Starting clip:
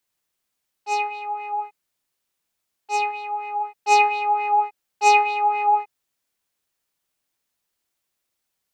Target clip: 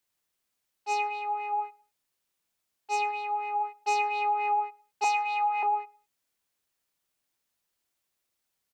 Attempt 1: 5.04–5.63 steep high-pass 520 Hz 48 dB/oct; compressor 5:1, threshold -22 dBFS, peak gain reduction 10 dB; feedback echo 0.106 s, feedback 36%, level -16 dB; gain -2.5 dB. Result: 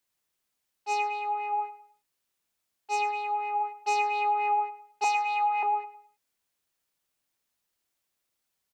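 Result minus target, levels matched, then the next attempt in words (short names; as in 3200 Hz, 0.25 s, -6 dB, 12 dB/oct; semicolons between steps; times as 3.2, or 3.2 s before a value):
echo-to-direct +10.5 dB
5.04–5.63 steep high-pass 520 Hz 48 dB/oct; compressor 5:1, threshold -22 dBFS, peak gain reduction 10 dB; feedback echo 0.106 s, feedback 36%, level -26.5 dB; gain -2.5 dB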